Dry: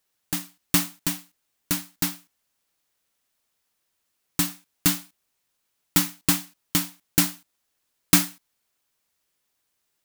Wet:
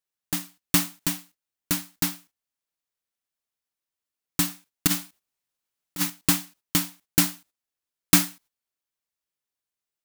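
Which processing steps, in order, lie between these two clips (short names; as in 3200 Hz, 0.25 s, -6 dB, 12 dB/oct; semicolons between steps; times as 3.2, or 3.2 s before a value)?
4.87–6.1 negative-ratio compressor -24 dBFS, ratio -0.5; gate -51 dBFS, range -14 dB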